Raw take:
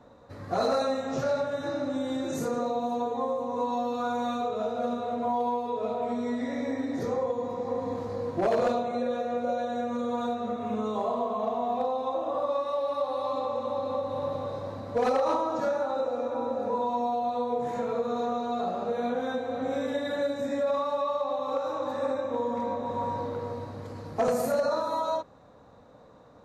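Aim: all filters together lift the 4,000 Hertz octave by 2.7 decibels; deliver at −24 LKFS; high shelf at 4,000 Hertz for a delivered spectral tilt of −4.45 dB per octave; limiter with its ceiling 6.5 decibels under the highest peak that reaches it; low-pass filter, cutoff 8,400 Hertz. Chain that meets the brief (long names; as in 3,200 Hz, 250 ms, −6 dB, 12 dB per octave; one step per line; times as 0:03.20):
low-pass filter 8,400 Hz
high-shelf EQ 4,000 Hz −3 dB
parametric band 4,000 Hz +4.5 dB
level +8 dB
brickwall limiter −15.5 dBFS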